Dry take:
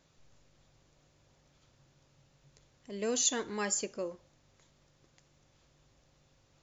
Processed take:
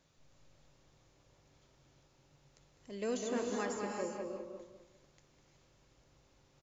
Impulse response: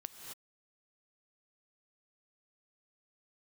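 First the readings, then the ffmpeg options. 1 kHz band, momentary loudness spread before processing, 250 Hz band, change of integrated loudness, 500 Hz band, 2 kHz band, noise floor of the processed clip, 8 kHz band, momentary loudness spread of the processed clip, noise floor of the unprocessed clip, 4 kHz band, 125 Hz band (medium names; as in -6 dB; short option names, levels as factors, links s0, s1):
0.0 dB, 13 LU, 0.0 dB, -6.5 dB, -0.5 dB, -4.0 dB, -70 dBFS, no reading, 14 LU, -69 dBFS, -12.5 dB, -1.0 dB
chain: -filter_complex "[0:a]acrossover=split=1800[s0][s1];[s1]acompressor=threshold=0.00562:ratio=6[s2];[s0][s2]amix=inputs=2:normalize=0,asplit=2[s3][s4];[s4]adelay=202,lowpass=f=1800:p=1,volume=0.631,asplit=2[s5][s6];[s6]adelay=202,lowpass=f=1800:p=1,volume=0.31,asplit=2[s7][s8];[s8]adelay=202,lowpass=f=1800:p=1,volume=0.31,asplit=2[s9][s10];[s10]adelay=202,lowpass=f=1800:p=1,volume=0.31[s11];[s3][s5][s7][s9][s11]amix=inputs=5:normalize=0[s12];[1:a]atrim=start_sample=2205,asetrate=32634,aresample=44100[s13];[s12][s13]afir=irnorm=-1:irlink=0"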